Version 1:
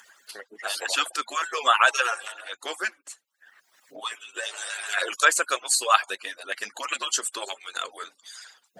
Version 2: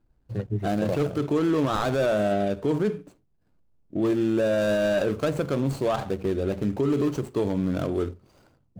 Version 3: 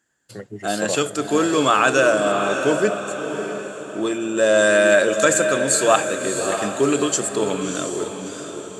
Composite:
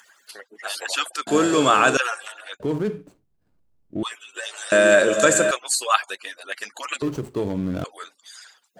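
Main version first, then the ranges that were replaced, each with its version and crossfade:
1
1.27–1.97 s: from 3
2.60–4.03 s: from 2
4.72–5.51 s: from 3
7.02–7.84 s: from 2

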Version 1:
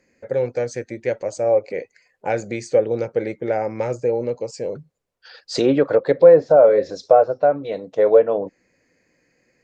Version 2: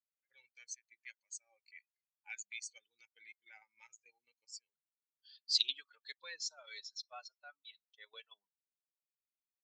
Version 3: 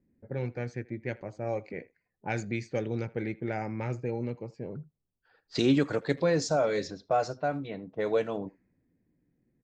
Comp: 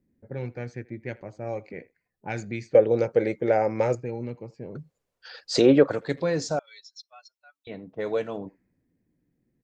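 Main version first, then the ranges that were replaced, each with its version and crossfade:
3
2.75–3.95 s: from 1
4.75–5.91 s: from 1
6.59–7.67 s: from 2

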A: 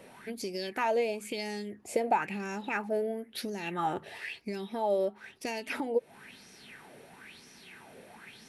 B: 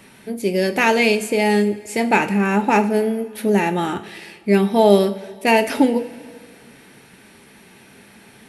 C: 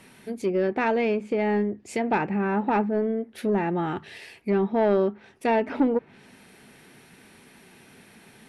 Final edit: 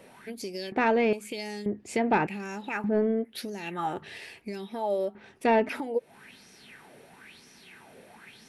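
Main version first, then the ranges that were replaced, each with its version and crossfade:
A
0.72–1.13 s: from C
1.66–2.27 s: from C
2.84–3.25 s: from C
4.02–4.47 s: from C
5.15–5.69 s: from C
not used: B

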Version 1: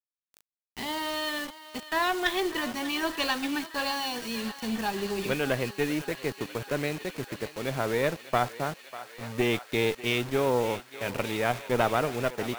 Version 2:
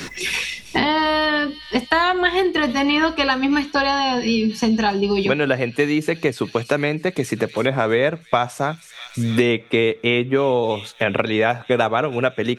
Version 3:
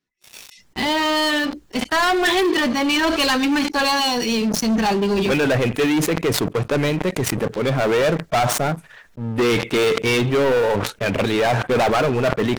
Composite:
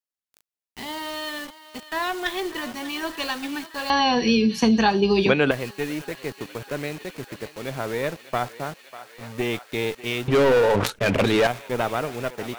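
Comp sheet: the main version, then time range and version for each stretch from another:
1
3.90–5.51 s: from 2
10.28–11.47 s: from 3

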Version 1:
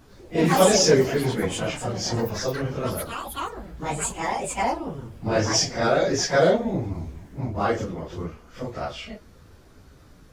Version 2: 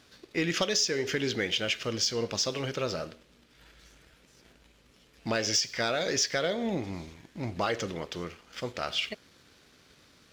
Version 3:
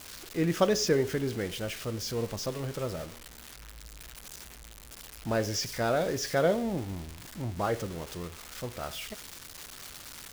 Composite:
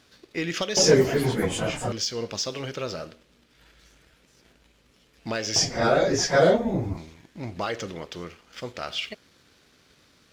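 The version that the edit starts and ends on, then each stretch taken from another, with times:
2
0.77–1.92 s: from 1
5.56–6.97 s: from 1
not used: 3

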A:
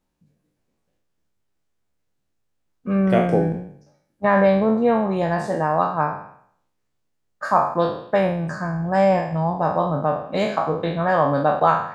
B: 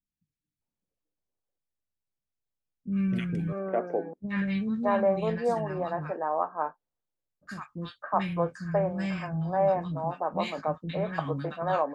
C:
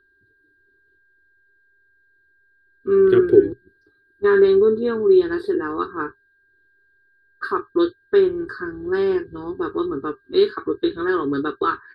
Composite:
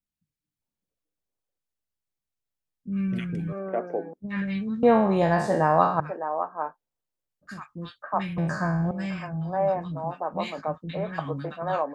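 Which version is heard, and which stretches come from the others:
B
4.83–6.00 s: from A
8.38–8.91 s: from A
not used: C

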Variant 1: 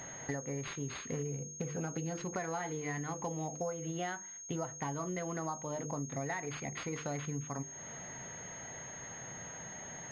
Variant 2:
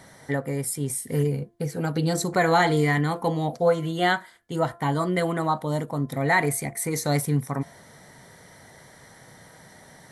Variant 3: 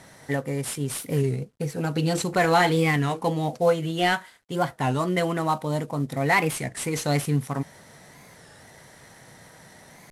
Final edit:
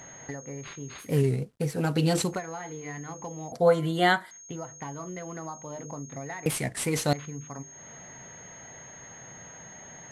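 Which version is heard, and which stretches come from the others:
1
1.06–2.33 s: from 3, crossfade 0.16 s
3.52–4.31 s: from 2
6.46–7.13 s: from 3

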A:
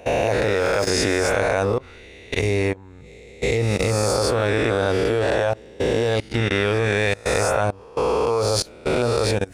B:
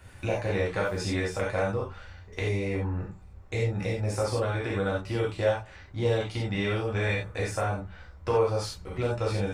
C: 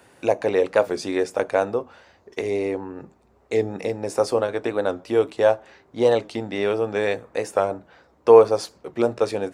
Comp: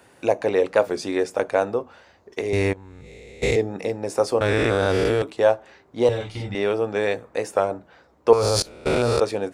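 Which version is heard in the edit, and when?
C
2.53–3.56 s: from A
4.41–5.22 s: from A
6.09–6.55 s: from B
8.33–9.20 s: from A

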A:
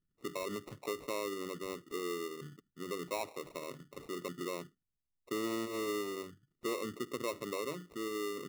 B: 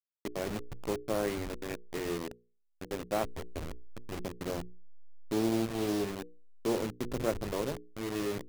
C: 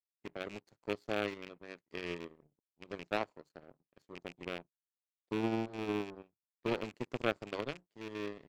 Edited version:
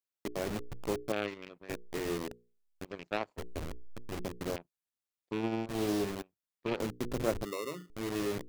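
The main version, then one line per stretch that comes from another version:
B
1.12–1.69 s: from C
2.85–3.38 s: from C
4.56–5.69 s: from C
6.22–6.80 s: from C
7.45–7.90 s: from A

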